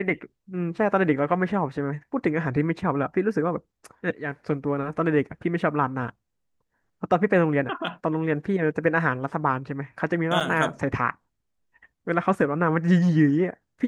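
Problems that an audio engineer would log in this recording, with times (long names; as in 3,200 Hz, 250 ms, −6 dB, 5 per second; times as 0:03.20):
0:10.40–0:10.41: drop-out 5.6 ms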